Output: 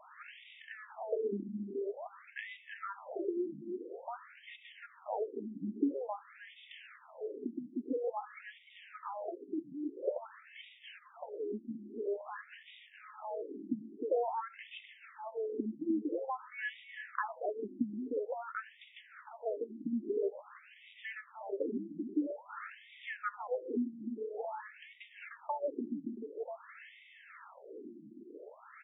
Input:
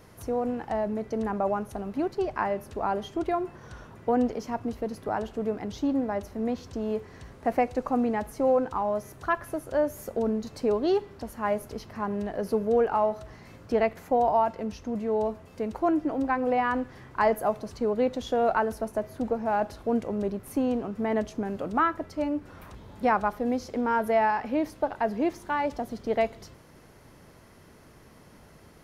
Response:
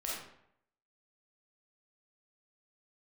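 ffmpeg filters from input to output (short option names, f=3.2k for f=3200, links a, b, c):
-filter_complex "[0:a]equalizer=f=820:w=3.3:g=-8.5,aecho=1:1:2.3:0.35,acompressor=threshold=-39dB:ratio=6,aeval=exprs='val(0)+0.0002*(sin(2*PI*60*n/s)+sin(2*PI*2*60*n/s)/2+sin(2*PI*3*60*n/s)/3+sin(2*PI*4*60*n/s)/4+sin(2*PI*5*60*n/s)/5)':c=same,aresample=8000,acrusher=bits=5:mode=log:mix=0:aa=0.000001,aresample=44100,acrossover=split=700[a][b];[a]aeval=exprs='val(0)*(1-0.5/2+0.5/2*cos(2*PI*1.4*n/s))':c=same[c];[b]aeval=exprs='val(0)*(1-0.5/2-0.5/2*cos(2*PI*1.4*n/s))':c=same[d];[c][d]amix=inputs=2:normalize=0,asplit=2[e][f];[f]adelay=304,lowpass=f=2.3k:p=1,volume=-7dB,asplit=2[g][h];[h]adelay=304,lowpass=f=2.3k:p=1,volume=0.27,asplit=2[i][j];[j]adelay=304,lowpass=f=2.3k:p=1,volume=0.27[k];[e][g][i][k]amix=inputs=4:normalize=0,afftfilt=real='re*between(b*sr/1024,240*pow(2700/240,0.5+0.5*sin(2*PI*0.49*pts/sr))/1.41,240*pow(2700/240,0.5+0.5*sin(2*PI*0.49*pts/sr))*1.41)':imag='im*between(b*sr/1024,240*pow(2700/240,0.5+0.5*sin(2*PI*0.49*pts/sr))/1.41,240*pow(2700/240,0.5+0.5*sin(2*PI*0.49*pts/sr))*1.41)':win_size=1024:overlap=0.75,volume=11.5dB"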